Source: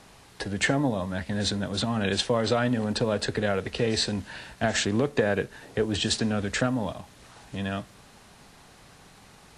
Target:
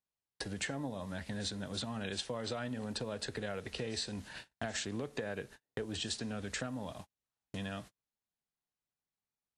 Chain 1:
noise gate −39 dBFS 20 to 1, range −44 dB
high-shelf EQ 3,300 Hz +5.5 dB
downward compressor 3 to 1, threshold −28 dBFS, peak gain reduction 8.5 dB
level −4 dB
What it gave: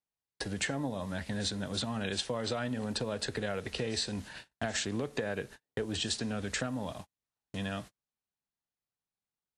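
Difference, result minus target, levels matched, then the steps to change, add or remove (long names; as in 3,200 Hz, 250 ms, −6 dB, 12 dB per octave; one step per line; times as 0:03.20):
downward compressor: peak gain reduction −4.5 dB
change: downward compressor 3 to 1, threshold −35 dBFS, peak gain reduction 13 dB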